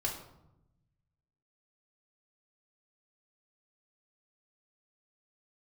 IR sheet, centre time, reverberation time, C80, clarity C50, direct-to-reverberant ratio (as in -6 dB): 27 ms, 0.90 s, 9.5 dB, 6.5 dB, -3.5 dB